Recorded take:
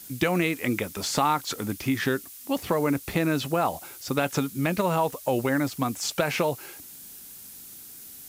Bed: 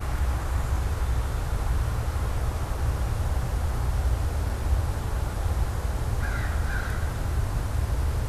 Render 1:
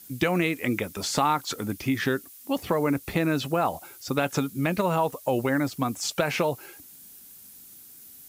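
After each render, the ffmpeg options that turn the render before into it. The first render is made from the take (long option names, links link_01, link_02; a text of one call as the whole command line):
ffmpeg -i in.wav -af "afftdn=noise_reduction=6:noise_floor=-45" out.wav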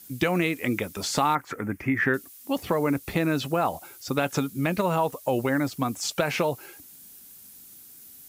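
ffmpeg -i in.wav -filter_complex "[0:a]asettb=1/sr,asplit=3[link_01][link_02][link_03];[link_01]atrim=end=1.354[link_04];[link_02]atrim=start=1.35:end=2.14,asetpts=PTS-STARTPTS,afade=type=in:duration=0.004:curve=qsin,afade=type=out:start_time=0.786:duration=0.004:curve=qsin,highshelf=frequency=2700:width_type=q:width=3:gain=-11.5[link_05];[link_03]atrim=start=2.136[link_06];[link_04][link_05]acrossfade=duration=0.004:curve1=hsin:curve2=qsin[link_07];[link_07][link_06]acrossfade=duration=0.004:curve1=qsin:curve2=hsin" out.wav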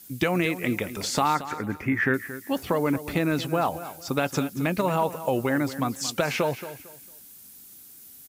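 ffmpeg -i in.wav -af "aecho=1:1:226|452|678:0.211|0.055|0.0143" out.wav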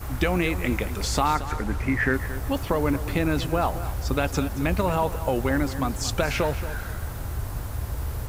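ffmpeg -i in.wav -i bed.wav -filter_complex "[1:a]volume=-4dB[link_01];[0:a][link_01]amix=inputs=2:normalize=0" out.wav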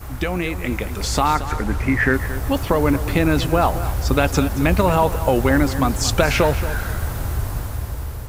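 ffmpeg -i in.wav -af "dynaudnorm=framelen=280:gausssize=7:maxgain=8.5dB" out.wav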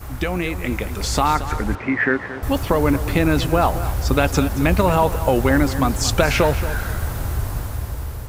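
ffmpeg -i in.wav -filter_complex "[0:a]asettb=1/sr,asplit=3[link_01][link_02][link_03];[link_01]atrim=end=1.754[link_04];[link_02]atrim=start=1.75:end=2.43,asetpts=PTS-STARTPTS,afade=type=in:duration=0.004:curve=qsin,afade=type=out:start_time=0.676:duration=0.004:curve=qsin,highpass=210,lowpass=3200[link_05];[link_03]atrim=start=2.426[link_06];[link_04][link_05]acrossfade=duration=0.004:curve1=hsin:curve2=qsin[link_07];[link_07][link_06]acrossfade=duration=0.004:curve1=qsin:curve2=hsin" out.wav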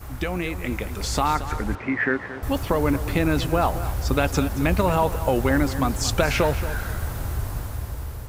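ffmpeg -i in.wav -af "volume=-4dB" out.wav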